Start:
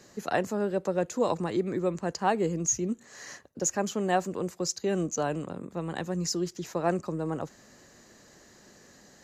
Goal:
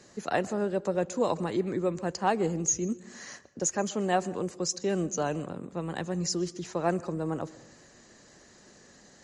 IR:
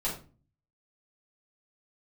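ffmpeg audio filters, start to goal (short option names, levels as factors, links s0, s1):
-filter_complex "[0:a]asplit=2[s0][s1];[1:a]atrim=start_sample=2205,asetrate=27342,aresample=44100,adelay=120[s2];[s1][s2]afir=irnorm=-1:irlink=0,volume=0.0376[s3];[s0][s3]amix=inputs=2:normalize=0" -ar 48000 -c:a libmp3lame -b:a 48k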